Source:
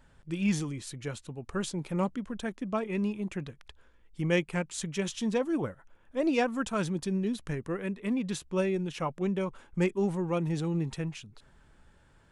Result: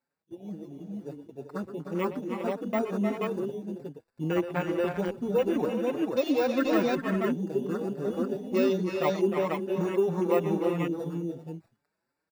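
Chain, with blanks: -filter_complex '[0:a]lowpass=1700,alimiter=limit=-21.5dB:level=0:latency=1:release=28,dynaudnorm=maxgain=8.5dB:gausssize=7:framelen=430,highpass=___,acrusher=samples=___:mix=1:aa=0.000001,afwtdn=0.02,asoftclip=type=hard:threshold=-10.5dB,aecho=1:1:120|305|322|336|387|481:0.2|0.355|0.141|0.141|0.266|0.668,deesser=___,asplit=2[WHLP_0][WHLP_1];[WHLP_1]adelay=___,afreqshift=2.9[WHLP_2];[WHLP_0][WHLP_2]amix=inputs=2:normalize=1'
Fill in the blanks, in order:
280, 14, 0.75, 5.4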